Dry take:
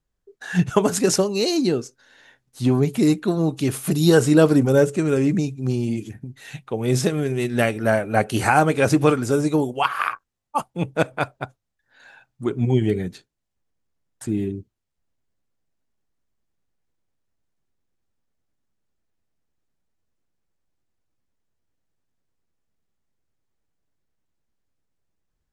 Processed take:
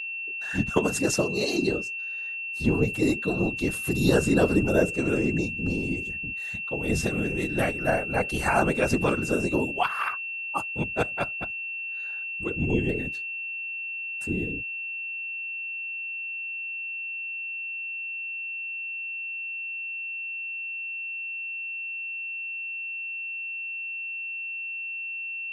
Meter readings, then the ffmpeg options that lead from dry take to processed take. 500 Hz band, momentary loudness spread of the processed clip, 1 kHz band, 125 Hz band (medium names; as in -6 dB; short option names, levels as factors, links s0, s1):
-6.0 dB, 7 LU, -6.0 dB, -7.5 dB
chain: -af "afftfilt=real='hypot(re,im)*cos(2*PI*random(0))':imag='hypot(re,im)*sin(2*PI*random(1))':win_size=512:overlap=0.75,aeval=exprs='val(0)+0.0282*sin(2*PI*2700*n/s)':c=same"